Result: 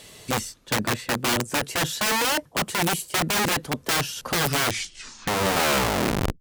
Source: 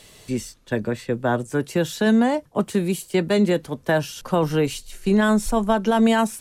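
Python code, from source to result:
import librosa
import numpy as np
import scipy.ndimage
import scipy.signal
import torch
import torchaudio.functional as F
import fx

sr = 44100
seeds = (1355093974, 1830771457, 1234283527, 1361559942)

y = fx.tape_stop_end(x, sr, length_s=2.06)
y = (np.mod(10.0 ** (19.5 / 20.0) * y + 1.0, 2.0) - 1.0) / 10.0 ** (19.5 / 20.0)
y = fx.highpass(y, sr, hz=70.0, slope=6)
y = F.gain(torch.from_numpy(y), 2.5).numpy()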